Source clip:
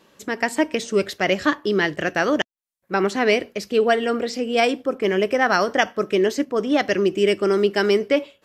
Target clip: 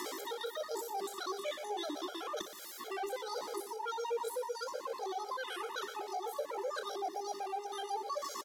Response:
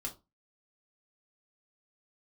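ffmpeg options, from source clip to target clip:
-filter_complex "[0:a]aeval=exprs='val(0)+0.5*0.0668*sgn(val(0))':channel_layout=same,highpass=frequency=180:width=0.5412,highpass=frequency=180:width=1.3066,equalizer=frequency=330:width_type=q:width=4:gain=-6,equalizer=frequency=1300:width_type=q:width=4:gain=-9,equalizer=frequency=4600:width_type=q:width=4:gain=-6,lowpass=frequency=6800:width=0.5412,lowpass=frequency=6800:width=1.3066,asetrate=88200,aresample=44100,atempo=0.5,areverse,acompressor=threshold=-27dB:ratio=10,areverse,aecho=1:1:60|120|180|240|300|360:0.335|0.174|0.0906|0.0471|0.0245|0.0127,acrossover=split=380[link_01][link_02];[link_02]acompressor=threshold=-54dB:ratio=2[link_03];[link_01][link_03]amix=inputs=2:normalize=0,afftfilt=real='re*gt(sin(2*PI*7.9*pts/sr)*(1-2*mod(floor(b*sr/1024/420),2)),0)':imag='im*gt(sin(2*PI*7.9*pts/sr)*(1-2*mod(floor(b*sr/1024/420),2)),0)':win_size=1024:overlap=0.75,volume=5.5dB"

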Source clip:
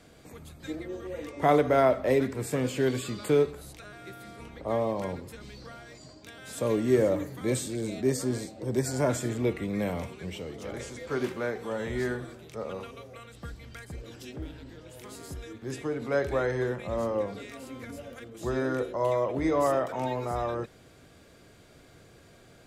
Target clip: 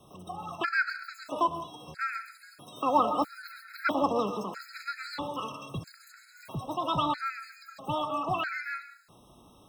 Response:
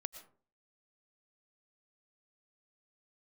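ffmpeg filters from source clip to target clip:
-filter_complex "[0:a]asetrate=103194,aresample=44100,equalizer=frequency=86:width=0.63:gain=8.5,acrossover=split=620|4700[link_01][link_02][link_03];[link_03]acompressor=threshold=-54dB:ratio=5[link_04];[link_01][link_02][link_04]amix=inputs=3:normalize=0[link_05];[1:a]atrim=start_sample=2205,asetrate=41454,aresample=44100[link_06];[link_05][link_06]afir=irnorm=-1:irlink=0,dynaudnorm=framelen=260:gausssize=21:maxgain=4.5dB,afftfilt=real='re*gt(sin(2*PI*0.77*pts/sr)*(1-2*mod(floor(b*sr/1024/1300),2)),0)':imag='im*gt(sin(2*PI*0.77*pts/sr)*(1-2*mod(floor(b*sr/1024/1300),2)),0)':win_size=1024:overlap=0.75"

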